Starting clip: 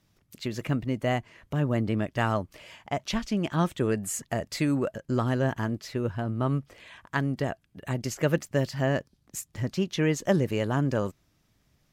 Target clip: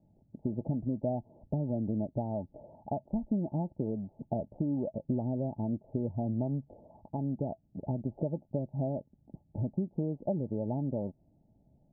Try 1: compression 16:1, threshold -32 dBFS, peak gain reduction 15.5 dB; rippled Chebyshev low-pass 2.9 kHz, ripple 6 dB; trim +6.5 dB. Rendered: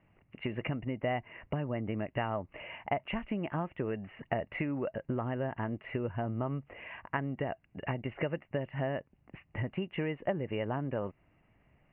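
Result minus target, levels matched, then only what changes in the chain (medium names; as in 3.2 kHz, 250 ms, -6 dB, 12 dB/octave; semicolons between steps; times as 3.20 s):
1 kHz band +6.5 dB
change: rippled Chebyshev low-pass 880 Hz, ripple 6 dB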